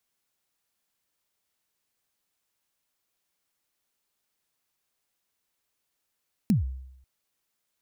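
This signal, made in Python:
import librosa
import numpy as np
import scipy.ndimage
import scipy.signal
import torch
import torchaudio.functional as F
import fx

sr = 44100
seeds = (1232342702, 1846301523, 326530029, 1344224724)

y = fx.drum_kick(sr, seeds[0], length_s=0.54, level_db=-16, start_hz=240.0, end_hz=65.0, sweep_ms=136.0, decay_s=0.81, click=True)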